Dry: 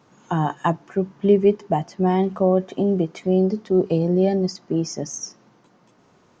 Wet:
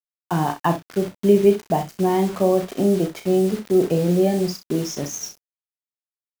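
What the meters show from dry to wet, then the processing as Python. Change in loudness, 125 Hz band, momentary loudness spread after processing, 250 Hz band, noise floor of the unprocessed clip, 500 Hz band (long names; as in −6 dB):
+0.5 dB, −0.5 dB, 10 LU, +0.5 dB, −58 dBFS, +1.0 dB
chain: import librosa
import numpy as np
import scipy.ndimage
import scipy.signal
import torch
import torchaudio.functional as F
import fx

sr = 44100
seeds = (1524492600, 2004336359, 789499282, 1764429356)

y = fx.quant_dither(x, sr, seeds[0], bits=6, dither='none')
y = fx.room_early_taps(y, sr, ms=(35, 63), db=(-8.0, -12.0))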